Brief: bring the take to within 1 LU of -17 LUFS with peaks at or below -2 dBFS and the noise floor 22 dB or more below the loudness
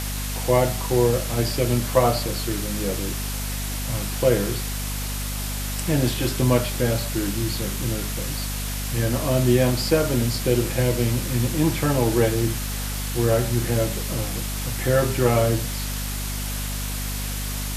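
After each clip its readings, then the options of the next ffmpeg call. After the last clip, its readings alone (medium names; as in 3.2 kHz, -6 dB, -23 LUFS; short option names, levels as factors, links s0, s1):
hum 50 Hz; highest harmonic 250 Hz; hum level -27 dBFS; noise floor -28 dBFS; noise floor target -46 dBFS; loudness -23.5 LUFS; peak level -4.0 dBFS; loudness target -17.0 LUFS
-> -af "bandreject=f=50:t=h:w=6,bandreject=f=100:t=h:w=6,bandreject=f=150:t=h:w=6,bandreject=f=200:t=h:w=6,bandreject=f=250:t=h:w=6"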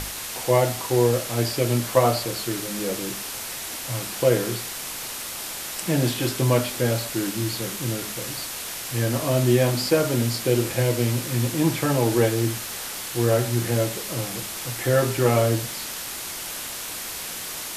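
hum not found; noise floor -33 dBFS; noise floor target -46 dBFS
-> -af "afftdn=nr=13:nf=-33"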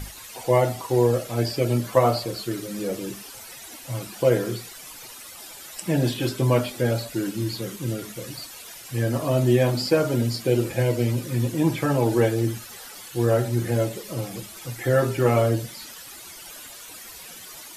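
noise floor -42 dBFS; noise floor target -46 dBFS
-> -af "afftdn=nr=6:nf=-42"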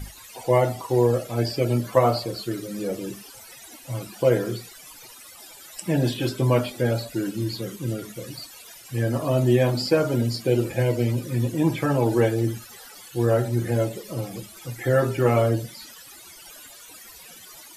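noise floor -46 dBFS; loudness -24.0 LUFS; peak level -4.5 dBFS; loudness target -17.0 LUFS
-> -af "volume=2.24,alimiter=limit=0.794:level=0:latency=1"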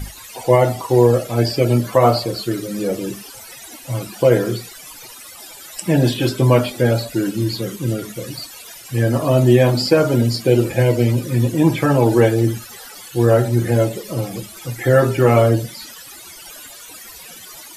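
loudness -17.0 LUFS; peak level -2.0 dBFS; noise floor -39 dBFS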